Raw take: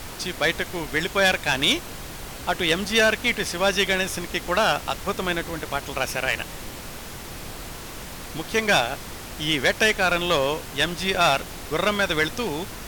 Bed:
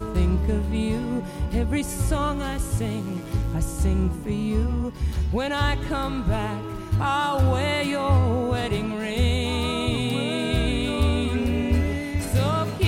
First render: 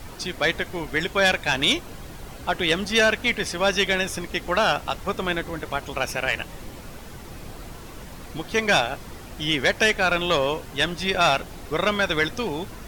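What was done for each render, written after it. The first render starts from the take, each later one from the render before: denoiser 8 dB, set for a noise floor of -37 dBFS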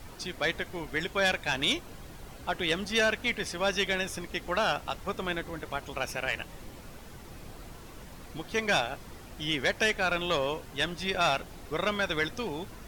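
gain -7 dB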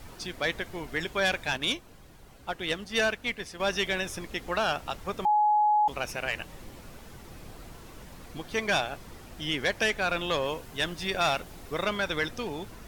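1.57–3.6 upward expander, over -37 dBFS; 5.25–5.88 bleep 842 Hz -19.5 dBFS; 10.45–11.84 high shelf 8700 Hz +4.5 dB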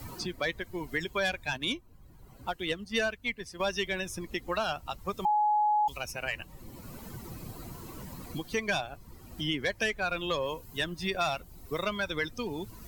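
per-bin expansion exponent 1.5; three-band squash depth 70%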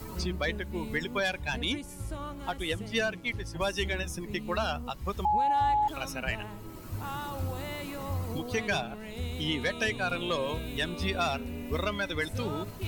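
add bed -14.5 dB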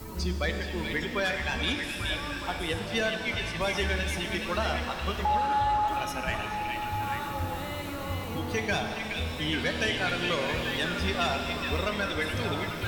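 on a send: delay with a stepping band-pass 0.421 s, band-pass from 2800 Hz, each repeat -0.7 oct, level -1.5 dB; on the sum: shimmer reverb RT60 2.9 s, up +7 st, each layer -8 dB, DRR 5 dB

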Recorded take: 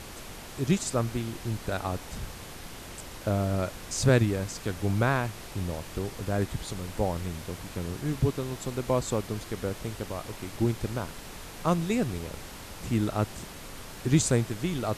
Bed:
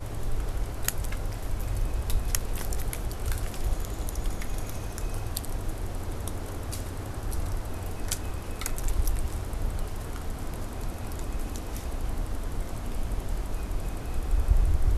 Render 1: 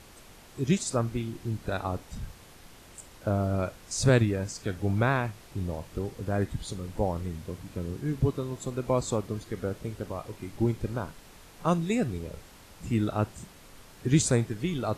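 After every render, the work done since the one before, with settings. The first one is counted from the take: noise print and reduce 9 dB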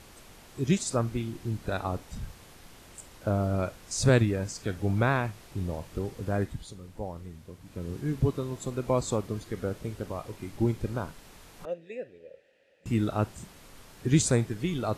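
6.34–7.97 dip -8.5 dB, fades 0.38 s linear; 11.65–12.86 vowel filter e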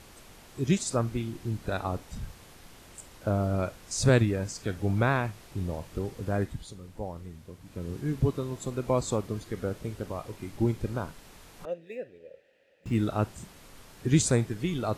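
11.82–12.96 median filter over 5 samples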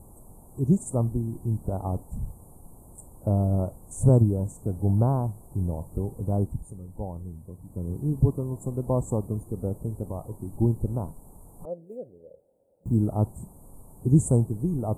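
elliptic band-stop 920–8800 Hz, stop band 40 dB; tone controls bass +6 dB, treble +3 dB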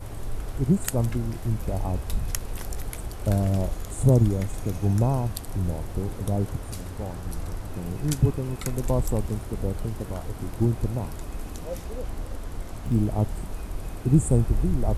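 add bed -2 dB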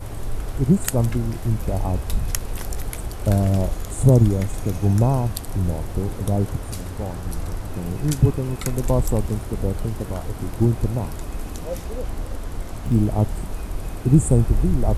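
gain +4.5 dB; limiter -3 dBFS, peak gain reduction 2.5 dB

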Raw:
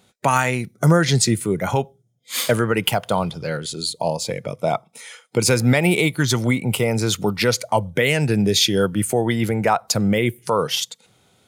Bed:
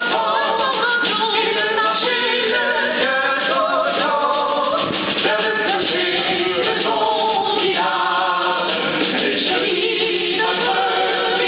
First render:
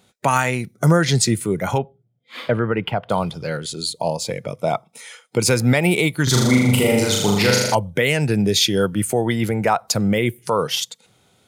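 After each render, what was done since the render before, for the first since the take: 1.78–3.1 air absorption 410 m; 6.23–7.75 flutter echo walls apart 6.8 m, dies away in 1.1 s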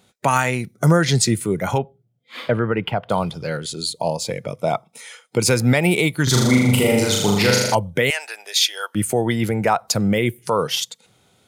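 8.1–8.95 inverse Chebyshev high-pass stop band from 170 Hz, stop band 70 dB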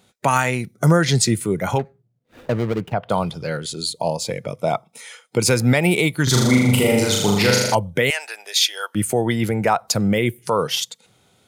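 1.79–2.93 median filter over 41 samples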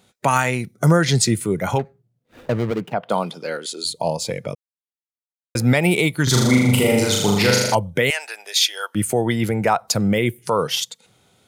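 2.7–3.84 HPF 120 Hz -> 310 Hz 24 dB/oct; 4.55–5.55 mute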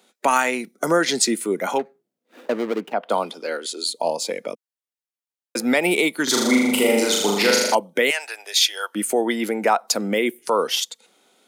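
steep high-pass 230 Hz 36 dB/oct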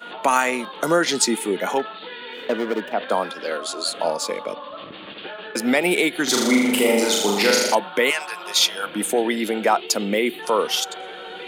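add bed -17 dB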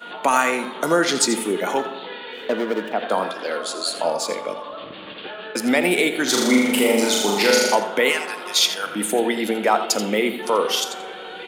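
echo 84 ms -12 dB; plate-style reverb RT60 1.9 s, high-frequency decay 0.35×, DRR 10.5 dB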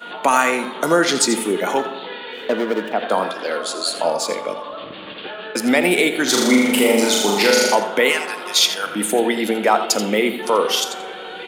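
gain +2.5 dB; limiter -3 dBFS, peak gain reduction 2.5 dB

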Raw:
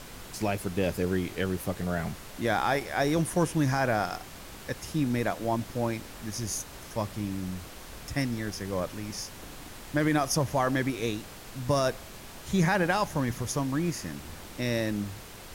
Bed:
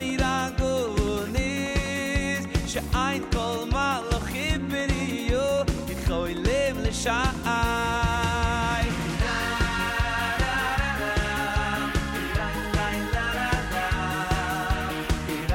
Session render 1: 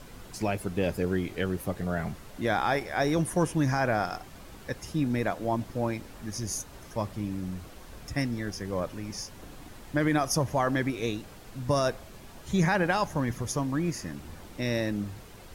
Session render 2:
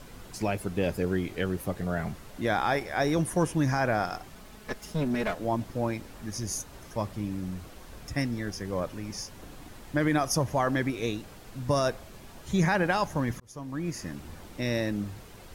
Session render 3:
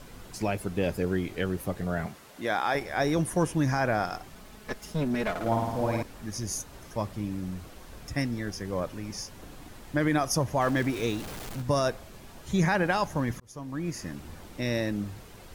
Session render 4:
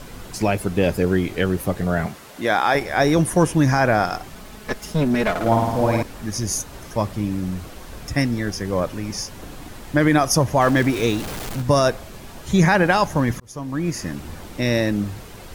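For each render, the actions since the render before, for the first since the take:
denoiser 7 dB, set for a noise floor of -45 dBFS
4.35–5.35 minimum comb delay 4.7 ms; 13.4–14.07 fade in
2.06–2.75 HPF 370 Hz 6 dB/oct; 5.3–6.03 flutter echo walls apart 9.2 m, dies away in 1.2 s; 10.61–11.62 zero-crossing step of -36 dBFS
gain +9 dB

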